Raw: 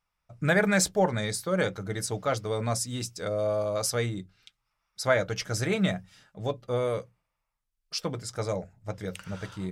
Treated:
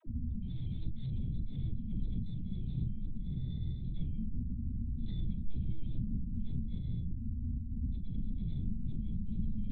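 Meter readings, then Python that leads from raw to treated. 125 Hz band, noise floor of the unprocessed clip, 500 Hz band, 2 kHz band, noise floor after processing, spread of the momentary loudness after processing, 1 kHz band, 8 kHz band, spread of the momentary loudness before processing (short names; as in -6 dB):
-3.0 dB, -82 dBFS, -36.0 dB, under -40 dB, -39 dBFS, 2 LU, under -40 dB, under -40 dB, 12 LU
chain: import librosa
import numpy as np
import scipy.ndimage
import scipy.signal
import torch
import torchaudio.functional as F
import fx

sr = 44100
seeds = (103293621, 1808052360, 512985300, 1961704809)

y = fx.band_shuffle(x, sr, order='3412')
y = (np.kron(y[::8], np.eye(8)[0]) * 8)[:len(y)]
y = scipy.signal.sosfilt(scipy.signal.cheby2(4, 70, [110.0, 3000.0], 'bandstop', fs=sr, output='sos'), y)
y = fx.add_hum(y, sr, base_hz=50, snr_db=26)
y = fx.lpc_vocoder(y, sr, seeds[0], excitation='pitch_kept', order=8)
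y = fx.hum_notches(y, sr, base_hz=50, count=4)
y = fx.doubler(y, sr, ms=40.0, db=-13.0)
y = fx.rider(y, sr, range_db=10, speed_s=0.5)
y = fx.dispersion(y, sr, late='lows', ms=68.0, hz=420.0)
y = fx.am_noise(y, sr, seeds[1], hz=5.7, depth_pct=50)
y = y * librosa.db_to_amplitude(18.0)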